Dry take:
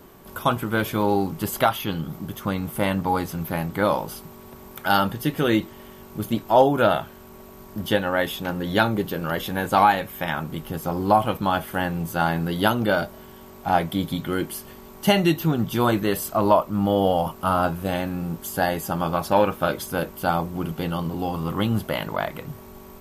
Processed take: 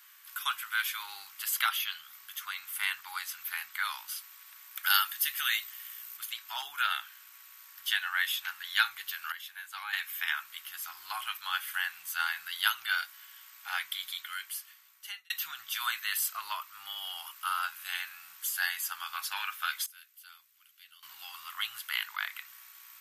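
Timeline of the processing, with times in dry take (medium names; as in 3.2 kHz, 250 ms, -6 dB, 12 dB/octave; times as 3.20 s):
4.83–6.17 s: treble shelf 7.8 kHz +10.5 dB
9.32–9.93 s: gain -11 dB
14.09–15.30 s: fade out
19.86–21.03 s: amplifier tone stack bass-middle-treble 6-0-2
whole clip: inverse Chebyshev high-pass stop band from 580 Hz, stop band 50 dB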